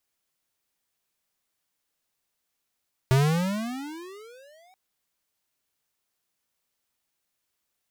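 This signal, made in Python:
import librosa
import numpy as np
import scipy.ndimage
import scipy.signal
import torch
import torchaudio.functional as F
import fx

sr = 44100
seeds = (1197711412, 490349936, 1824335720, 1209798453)

y = fx.riser_tone(sr, length_s=1.63, level_db=-18, wave='square', hz=128.0, rise_st=31.0, swell_db=-39.5)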